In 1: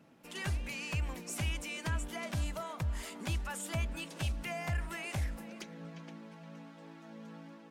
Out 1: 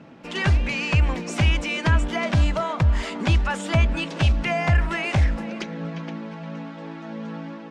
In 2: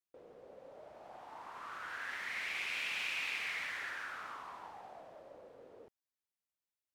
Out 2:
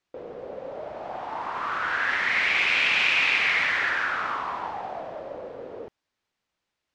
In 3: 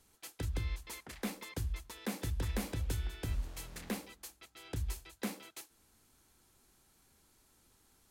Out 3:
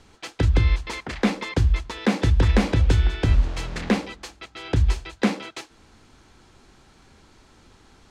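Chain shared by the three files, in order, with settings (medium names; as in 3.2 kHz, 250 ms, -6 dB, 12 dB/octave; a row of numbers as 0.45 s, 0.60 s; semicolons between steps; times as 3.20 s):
distance through air 130 m; normalise loudness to -23 LUFS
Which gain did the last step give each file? +16.0 dB, +18.0 dB, +18.5 dB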